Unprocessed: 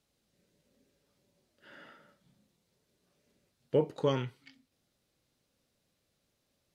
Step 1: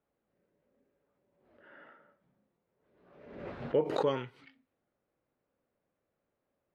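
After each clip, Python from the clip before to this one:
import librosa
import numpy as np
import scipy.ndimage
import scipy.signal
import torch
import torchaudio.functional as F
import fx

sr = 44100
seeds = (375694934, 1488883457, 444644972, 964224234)

y = fx.env_lowpass(x, sr, base_hz=1500.0, full_db=-32.5)
y = fx.bass_treble(y, sr, bass_db=-9, treble_db=-13)
y = fx.pre_swell(y, sr, db_per_s=55.0)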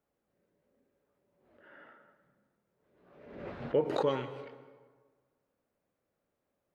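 y = fx.rev_plate(x, sr, seeds[0], rt60_s=1.5, hf_ratio=0.6, predelay_ms=115, drr_db=12.5)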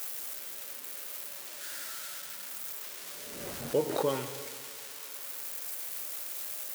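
y = x + 0.5 * 10.0 ** (-27.5 / 20.0) * np.diff(np.sign(x), prepend=np.sign(x[:1]))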